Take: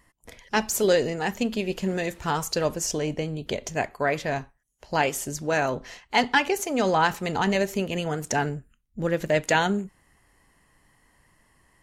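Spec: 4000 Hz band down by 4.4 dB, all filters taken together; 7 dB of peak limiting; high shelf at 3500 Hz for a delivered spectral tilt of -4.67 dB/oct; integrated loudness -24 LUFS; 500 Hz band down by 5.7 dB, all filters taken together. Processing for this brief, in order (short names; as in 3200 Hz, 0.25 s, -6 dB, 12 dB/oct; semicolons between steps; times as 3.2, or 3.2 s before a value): bell 500 Hz -7 dB; high shelf 3500 Hz -4.5 dB; bell 4000 Hz -3 dB; gain +6.5 dB; limiter -11.5 dBFS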